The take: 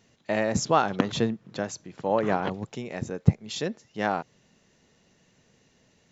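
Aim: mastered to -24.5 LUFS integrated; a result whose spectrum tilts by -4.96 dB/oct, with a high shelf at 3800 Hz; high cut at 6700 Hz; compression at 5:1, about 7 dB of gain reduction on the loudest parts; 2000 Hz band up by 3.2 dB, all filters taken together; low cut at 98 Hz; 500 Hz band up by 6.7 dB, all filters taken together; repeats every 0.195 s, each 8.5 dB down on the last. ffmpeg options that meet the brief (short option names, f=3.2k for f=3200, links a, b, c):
-af "highpass=98,lowpass=6.7k,equalizer=f=500:t=o:g=8,equalizer=f=2k:t=o:g=5.5,highshelf=f=3.8k:g=-8.5,acompressor=threshold=-22dB:ratio=5,aecho=1:1:195|390|585|780:0.376|0.143|0.0543|0.0206,volume=4.5dB"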